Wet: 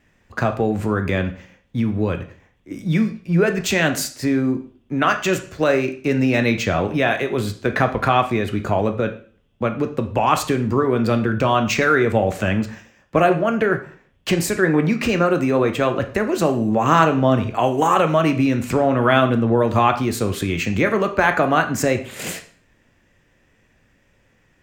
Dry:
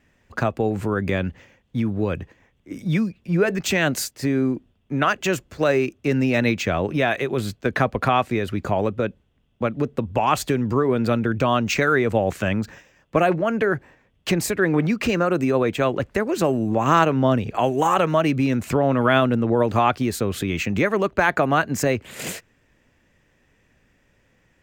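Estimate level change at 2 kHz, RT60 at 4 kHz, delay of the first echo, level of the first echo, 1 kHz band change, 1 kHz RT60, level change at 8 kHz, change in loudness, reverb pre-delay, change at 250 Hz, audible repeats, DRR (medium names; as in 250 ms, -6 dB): +2.5 dB, 0.45 s, no echo, no echo, +3.0 dB, 0.45 s, +2.0 dB, +2.5 dB, 6 ms, +2.5 dB, no echo, 6.0 dB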